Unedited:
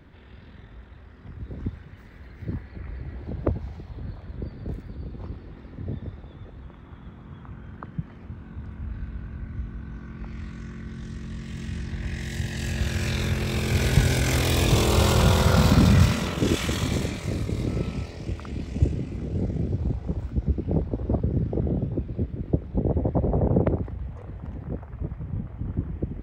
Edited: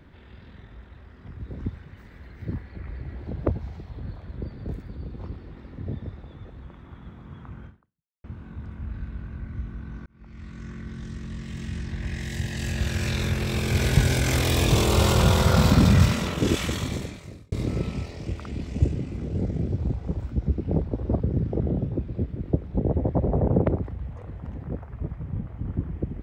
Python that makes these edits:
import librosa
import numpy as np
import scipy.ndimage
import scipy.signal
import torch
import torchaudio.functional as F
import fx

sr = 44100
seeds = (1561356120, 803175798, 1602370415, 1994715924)

y = fx.edit(x, sr, fx.fade_out_span(start_s=7.66, length_s=0.58, curve='exp'),
    fx.fade_in_span(start_s=10.06, length_s=0.64),
    fx.fade_out_span(start_s=16.57, length_s=0.95), tone=tone)